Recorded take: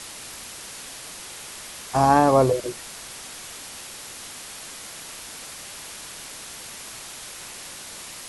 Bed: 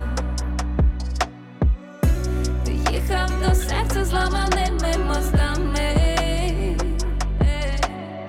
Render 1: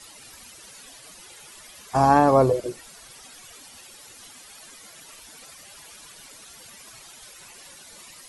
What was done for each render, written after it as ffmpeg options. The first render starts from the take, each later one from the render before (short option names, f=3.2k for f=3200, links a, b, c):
-af "afftdn=nr=13:nf=-39"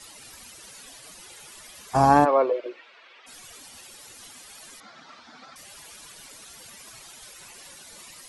-filter_complex "[0:a]asplit=3[a][b][c];[a]afade=t=out:st=2.24:d=0.02[d];[b]highpass=f=370:w=0.5412,highpass=f=370:w=1.3066,equalizer=f=420:t=q:w=4:g=-4,equalizer=f=760:t=q:w=4:g=-6,equalizer=f=2.4k:t=q:w=4:g=4,lowpass=f=3.3k:w=0.5412,lowpass=f=3.3k:w=1.3066,afade=t=in:st=2.24:d=0.02,afade=t=out:st=3.26:d=0.02[e];[c]afade=t=in:st=3.26:d=0.02[f];[d][e][f]amix=inputs=3:normalize=0,asettb=1/sr,asplit=3[g][h][i];[g]atrim=end=4.804[j];[h]atrim=start=4.8:end=5.56,asetpts=PTS-STARTPTS,afade=t=in:d=0.004:c=qsin,afade=t=out:st=0.756:d=0.004:c=qsin,highpass=130,equalizer=f=240:t=q:w=4:g=9,equalizer=f=430:t=q:w=4:g=-5,equalizer=f=770:t=q:w=4:g=6,equalizer=f=1.3k:t=q:w=4:g=9,equalizer=f=2.8k:t=q:w=4:g=-7,lowpass=f=4.6k:w=0.5412,lowpass=f=4.6k:w=1.3066[k];[i]atrim=start=5.556[l];[j][k]acrossfade=d=0.004:c1=hsin:c2=qsin[m];[m][l]acrossfade=d=0.004:c1=qsin:c2=hsin"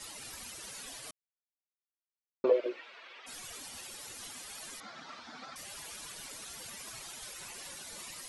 -filter_complex "[0:a]asplit=3[a][b][c];[a]atrim=end=1.11,asetpts=PTS-STARTPTS,afade=t=out:st=1.106:d=0.004:c=hsin[d];[b]atrim=start=1.11:end=2.44,asetpts=PTS-STARTPTS,volume=0[e];[c]atrim=start=2.44,asetpts=PTS-STARTPTS,afade=t=in:d=0.004:c=hsin[f];[d][e][f]concat=n=3:v=0:a=1"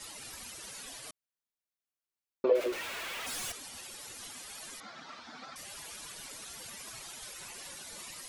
-filter_complex "[0:a]asettb=1/sr,asplit=3[a][b][c];[a]atrim=end=2.554[d];[b]atrim=start=2.55:end=3.52,asetpts=PTS-STARTPTS,afade=t=in:d=0.004:c=qsin,afade=t=out:st=0.966:d=0.004:c=qsin,aeval=exprs='val(0)+0.5*0.0168*sgn(val(0))':c=same[e];[c]atrim=start=3.516[f];[d][e]acrossfade=d=0.004:c1=hsin:c2=qsin[g];[g][f]acrossfade=d=0.004:c1=qsin:c2=hsin"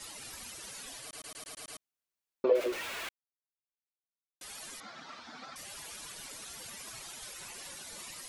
-filter_complex "[0:a]asplit=10[a][b][c][d][e][f][g][h][i][j];[a]atrim=end=1.132[k];[b]atrim=start=1.018:end=1.132[l];[c]atrim=start=1.018:end=1.132[m];[d]atrim=start=1.018:end=1.132[n];[e]atrim=start=1.018:end=1.132[o];[f]atrim=start=1.018:end=1.132[p];[g]atrim=start=1.018:end=1.132[q];[h]atrim=start=1.788:end=3.09,asetpts=PTS-STARTPTS,afade=t=out:st=1.298:d=0.004:c=hsin[r];[i]atrim=start=3.09:end=4.41,asetpts=PTS-STARTPTS,volume=0[s];[j]atrim=start=4.41,asetpts=PTS-STARTPTS,afade=t=in:d=0.004:c=hsin[t];[k][l]acrossfade=d=0.004:c1=hsin:c2=hsin[u];[u][m]acrossfade=d=0.004:c1=hsin:c2=hsin[v];[v][n]acrossfade=d=0.004:c1=hsin:c2=hsin[w];[w][o]acrossfade=d=0.004:c1=hsin:c2=hsin[x];[x][p]acrossfade=d=0.004:c1=hsin:c2=hsin[y];[y][q]acrossfade=d=0.004:c1=hsin:c2=hsin[z];[r][s][t]concat=n=3:v=0:a=1[aa];[z][aa]acrossfade=d=0.004:c1=hsin:c2=hsin"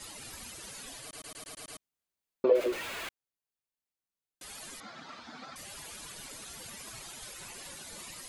-af "lowshelf=f=400:g=5,bandreject=f=5.6k:w=22"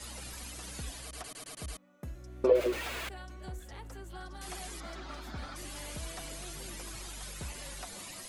-filter_complex "[1:a]volume=-24.5dB[a];[0:a][a]amix=inputs=2:normalize=0"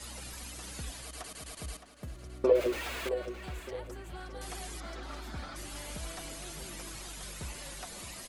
-filter_complex "[0:a]asplit=2[a][b];[b]adelay=616,lowpass=f=4.6k:p=1,volume=-10dB,asplit=2[c][d];[d]adelay=616,lowpass=f=4.6k:p=1,volume=0.42,asplit=2[e][f];[f]adelay=616,lowpass=f=4.6k:p=1,volume=0.42,asplit=2[g][h];[h]adelay=616,lowpass=f=4.6k:p=1,volume=0.42[i];[a][c][e][g][i]amix=inputs=5:normalize=0"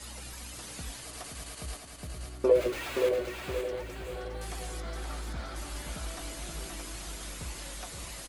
-filter_complex "[0:a]asplit=2[a][b];[b]adelay=18,volume=-11dB[c];[a][c]amix=inputs=2:normalize=0,asplit=2[d][e];[e]aecho=0:1:524|1048|1572|2096|2620:0.562|0.231|0.0945|0.0388|0.0159[f];[d][f]amix=inputs=2:normalize=0"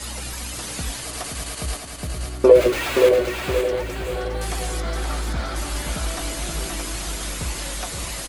-af "volume=12dB,alimiter=limit=-1dB:level=0:latency=1"